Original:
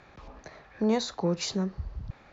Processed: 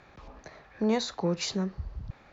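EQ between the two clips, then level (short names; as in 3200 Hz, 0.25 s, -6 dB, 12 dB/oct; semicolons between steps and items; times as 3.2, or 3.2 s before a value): dynamic EQ 2300 Hz, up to +3 dB, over -48 dBFS, Q 0.92; -1.0 dB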